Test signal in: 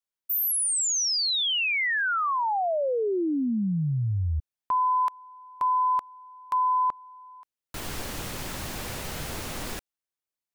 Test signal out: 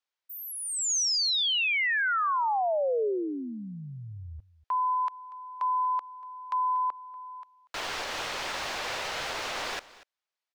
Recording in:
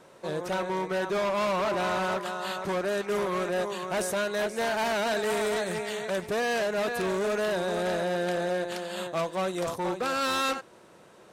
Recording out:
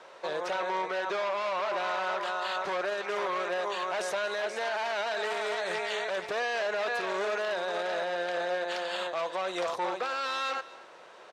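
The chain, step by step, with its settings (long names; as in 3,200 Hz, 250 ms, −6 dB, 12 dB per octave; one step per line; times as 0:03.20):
three-way crossover with the lows and the highs turned down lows −21 dB, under 470 Hz, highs −21 dB, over 6,000 Hz
brickwall limiter −29.5 dBFS
single-tap delay 239 ms −19 dB
level +6 dB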